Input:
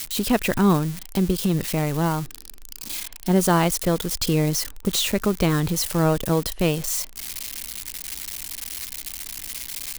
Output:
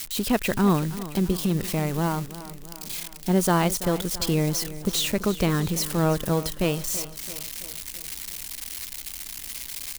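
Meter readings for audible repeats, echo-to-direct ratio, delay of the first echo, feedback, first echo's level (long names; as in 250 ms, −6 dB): 4, −13.5 dB, 333 ms, 56%, −15.0 dB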